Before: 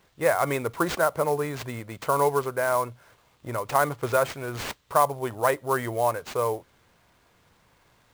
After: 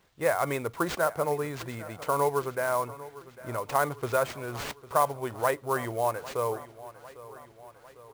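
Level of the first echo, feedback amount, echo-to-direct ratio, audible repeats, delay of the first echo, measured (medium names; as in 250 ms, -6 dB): -17.5 dB, 57%, -16.0 dB, 4, 801 ms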